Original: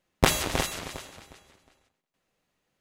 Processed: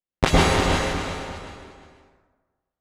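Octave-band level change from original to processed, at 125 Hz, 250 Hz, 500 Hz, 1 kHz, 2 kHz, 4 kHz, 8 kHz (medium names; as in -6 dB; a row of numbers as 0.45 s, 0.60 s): +9.5 dB, +8.5 dB, +8.0 dB, +8.0 dB, +6.5 dB, +4.5 dB, -0.5 dB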